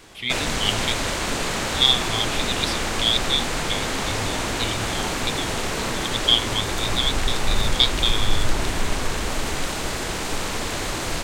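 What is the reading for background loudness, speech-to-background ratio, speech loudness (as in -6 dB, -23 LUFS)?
-25.5 LUFS, 2.0 dB, -23.5 LUFS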